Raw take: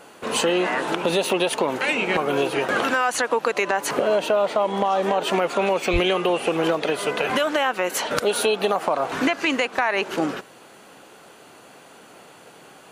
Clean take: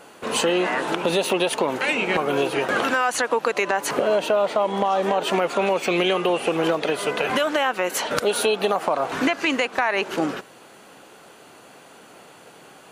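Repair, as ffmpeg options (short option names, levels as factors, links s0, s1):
-filter_complex "[0:a]asplit=3[s0][s1][s2];[s0]afade=t=out:st=5.92:d=0.02[s3];[s1]highpass=f=140:w=0.5412,highpass=f=140:w=1.3066,afade=t=in:st=5.92:d=0.02,afade=t=out:st=6.04:d=0.02[s4];[s2]afade=t=in:st=6.04:d=0.02[s5];[s3][s4][s5]amix=inputs=3:normalize=0"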